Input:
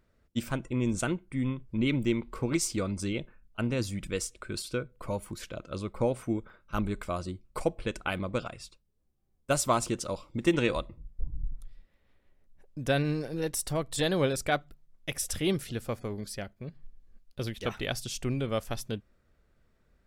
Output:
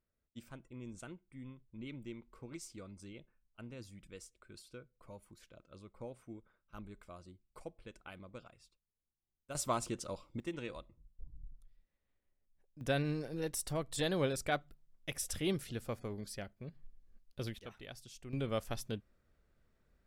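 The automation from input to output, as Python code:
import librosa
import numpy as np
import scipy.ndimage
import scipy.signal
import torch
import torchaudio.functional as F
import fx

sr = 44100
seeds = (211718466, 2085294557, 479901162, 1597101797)

y = fx.gain(x, sr, db=fx.steps((0.0, -19.0), (9.55, -8.5), (10.4, -16.5), (12.81, -6.5), (17.59, -17.5), (18.33, -5.5)))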